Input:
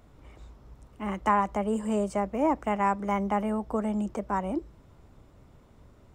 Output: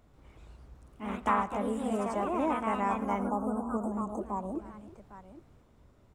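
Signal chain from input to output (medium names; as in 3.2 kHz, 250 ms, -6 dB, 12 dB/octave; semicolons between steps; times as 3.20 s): multi-tap echo 112/310/806 ms -18/-19/-15.5 dB; spectral selection erased 3.28–4.59 s, 1.3–6.2 kHz; ever faster or slower copies 139 ms, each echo +2 st, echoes 2; trim -6 dB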